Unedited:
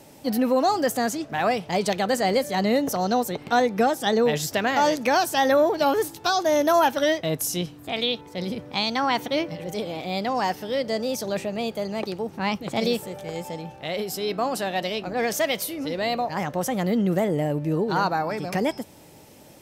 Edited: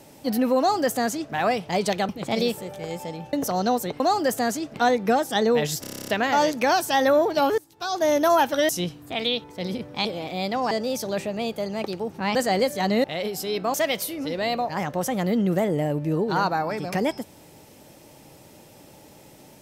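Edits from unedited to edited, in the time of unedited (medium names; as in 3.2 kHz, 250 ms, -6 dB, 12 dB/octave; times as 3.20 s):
0.58–1.32 s: copy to 3.45 s
2.09–2.78 s: swap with 12.54–13.78 s
4.52 s: stutter 0.03 s, 10 plays
6.02–6.47 s: fade in quadratic, from -20 dB
7.13–7.46 s: delete
8.82–9.78 s: delete
10.44–10.90 s: delete
14.48–15.34 s: delete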